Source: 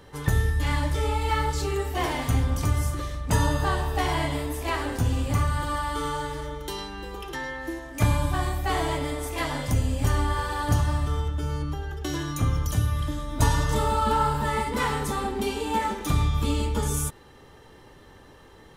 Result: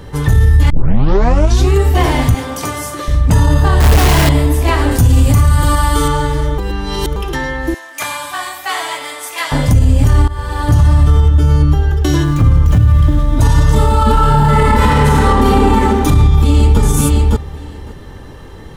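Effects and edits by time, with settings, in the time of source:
0.70 s: tape start 1.04 s
2.34–3.08 s: high-pass 410 Hz
3.80–4.29 s: one-bit comparator
4.91–6.08 s: treble shelf 6.1 kHz +11.5 dB
6.58–7.16 s: reverse
7.74–9.52 s: high-pass 1.1 kHz
10.28–11.21 s: fade in equal-power, from -20.5 dB
12.24–13.37 s: median filter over 9 samples
14.11–15.45 s: reverb throw, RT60 2.8 s, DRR -7.5 dB
16.20–16.80 s: echo throw 560 ms, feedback 10%, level -4.5 dB
whole clip: bass shelf 240 Hz +10.5 dB; loudness maximiser +12.5 dB; trim -1 dB

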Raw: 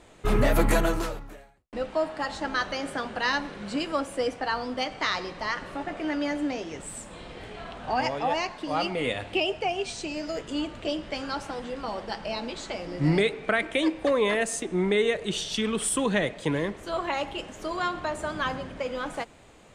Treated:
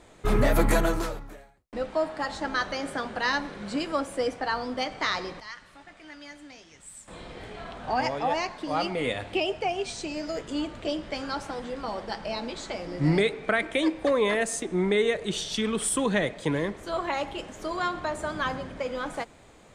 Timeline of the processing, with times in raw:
5.40–7.08 s: amplifier tone stack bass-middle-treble 5-5-5
whole clip: peaking EQ 2.8 kHz -4.5 dB 0.22 oct

